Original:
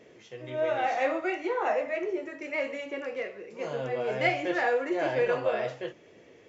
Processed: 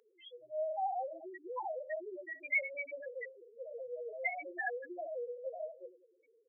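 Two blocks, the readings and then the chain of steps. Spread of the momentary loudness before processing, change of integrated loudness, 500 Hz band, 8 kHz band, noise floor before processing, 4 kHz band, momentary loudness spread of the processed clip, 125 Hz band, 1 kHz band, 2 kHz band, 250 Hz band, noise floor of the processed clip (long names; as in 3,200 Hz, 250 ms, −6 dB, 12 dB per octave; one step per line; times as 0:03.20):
11 LU, −10.0 dB, −12.0 dB, can't be measured, −55 dBFS, below −15 dB, 15 LU, below −40 dB, −9.5 dB, −7.0 dB, −20.0 dB, −71 dBFS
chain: downward compressor 6 to 1, threshold −28 dBFS, peak gain reduction 8.5 dB
high-shelf EQ 3,200 Hz +10.5 dB
repeating echo 94 ms, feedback 55%, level −14 dB
spectral peaks only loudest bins 2
high-pass filter 1,100 Hz 12 dB per octave
level +6.5 dB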